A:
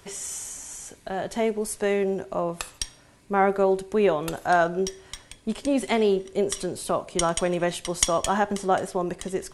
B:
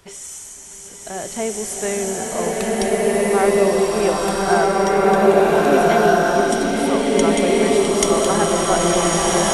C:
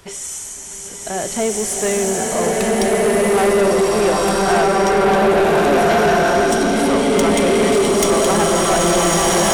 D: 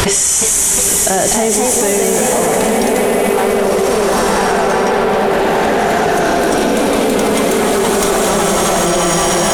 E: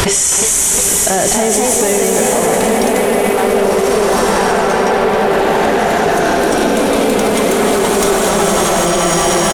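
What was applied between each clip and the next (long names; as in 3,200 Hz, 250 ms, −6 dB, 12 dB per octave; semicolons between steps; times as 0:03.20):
slow-attack reverb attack 1,710 ms, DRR −8.5 dB
soft clipping −16.5 dBFS, distortion −10 dB; level +6 dB
delay with pitch and tempo change per echo 363 ms, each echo +2 semitones, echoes 2; envelope flattener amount 100%; level −3.5 dB
far-end echo of a speakerphone 320 ms, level −7 dB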